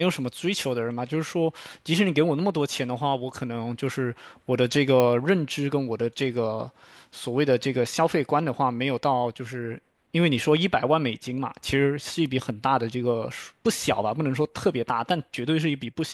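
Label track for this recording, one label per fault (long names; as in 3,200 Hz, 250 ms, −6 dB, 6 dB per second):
5.000000	5.000000	click −9 dBFS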